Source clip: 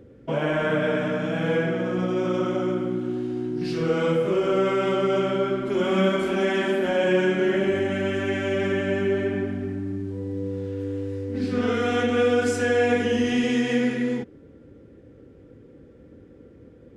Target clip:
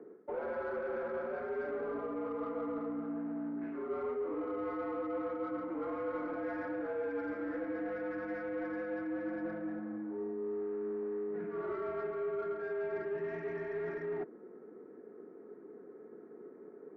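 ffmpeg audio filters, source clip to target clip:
-filter_complex "[0:a]highpass=f=410:t=q:w=0.5412,highpass=f=410:t=q:w=1.307,lowpass=f=2300:t=q:w=0.5176,lowpass=f=2300:t=q:w=0.7071,lowpass=f=2300:t=q:w=1.932,afreqshift=-78,areverse,acompressor=threshold=0.0141:ratio=6,areverse,asplit=2[s0][s1];[s1]highpass=f=720:p=1,volume=4.47,asoftclip=type=tanh:threshold=0.0355[s2];[s0][s2]amix=inputs=2:normalize=0,lowpass=f=1300:p=1,volume=0.501,adynamicsmooth=sensitivity=1.5:basefreq=1200,volume=1.26"

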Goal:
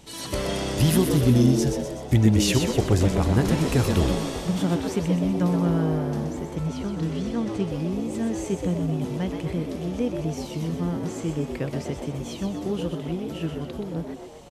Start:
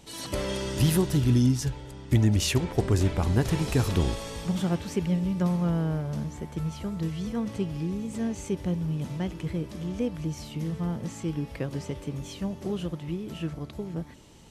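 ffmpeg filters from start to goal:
-filter_complex "[0:a]asettb=1/sr,asplit=3[s0][s1][s2];[s0]atrim=end=6.554[s3];[s1]atrim=start=6.55:end=7.65,asetpts=PTS-STARTPTS,afade=t=in:d=0.004:c=qsin,afade=t=out:st=1.096:d=0.004:c=qsin,lowpass=9400[s4];[s2]atrim=start=7.646[s5];[s3][s4]acrossfade=d=0.004:c1=hsin:c2=qsin[s6];[s6][s5]acrossfade=d=0.004:c1=qsin:c2=hsin,asplit=8[s7][s8][s9][s10][s11][s12][s13][s14];[s8]adelay=125,afreqshift=99,volume=0.473[s15];[s9]adelay=250,afreqshift=198,volume=0.254[s16];[s10]adelay=375,afreqshift=297,volume=0.138[s17];[s11]adelay=500,afreqshift=396,volume=0.0741[s18];[s12]adelay=625,afreqshift=495,volume=0.0403[s19];[s13]adelay=750,afreqshift=594,volume=0.0216[s20];[s14]adelay=875,afreqshift=693,volume=0.0117[s21];[s7][s15][s16][s17][s18][s19][s20][s21]amix=inputs=8:normalize=0,volume=1.33"

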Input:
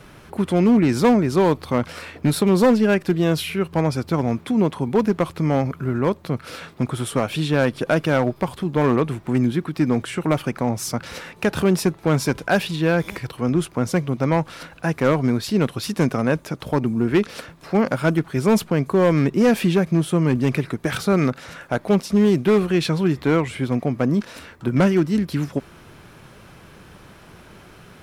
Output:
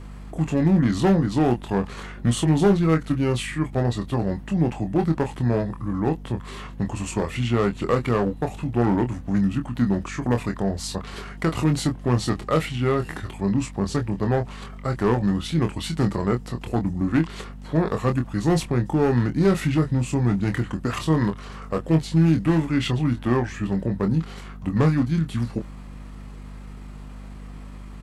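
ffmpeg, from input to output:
-filter_complex "[0:a]asetrate=35002,aresample=44100,atempo=1.25992,aeval=exprs='val(0)+0.02*(sin(2*PI*50*n/s)+sin(2*PI*2*50*n/s)/2+sin(2*PI*3*50*n/s)/3+sin(2*PI*4*50*n/s)/4+sin(2*PI*5*50*n/s)/5)':c=same,asplit=2[s0][s1];[s1]adelay=25,volume=0.473[s2];[s0][s2]amix=inputs=2:normalize=0,volume=0.668"

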